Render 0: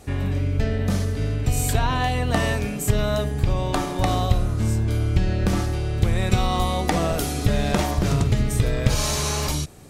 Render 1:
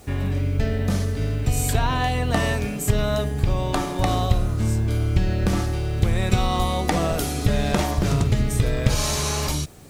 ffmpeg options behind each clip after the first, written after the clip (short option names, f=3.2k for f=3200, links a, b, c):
-af "acrusher=bits=8:mix=0:aa=0.000001"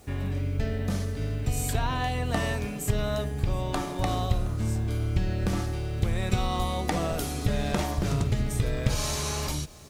-af "aecho=1:1:720:0.0794,volume=-6dB"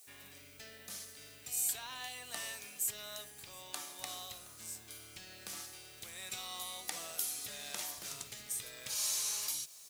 -af "aderivative"